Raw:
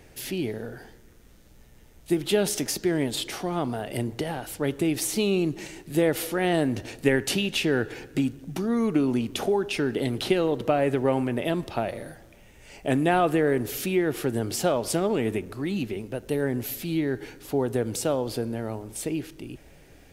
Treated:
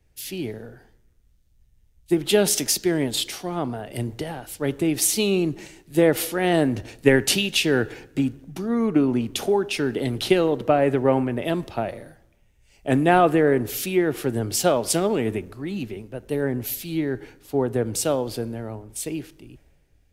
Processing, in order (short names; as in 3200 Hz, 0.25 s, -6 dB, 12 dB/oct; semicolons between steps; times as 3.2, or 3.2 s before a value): three-band expander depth 70%; gain +2.5 dB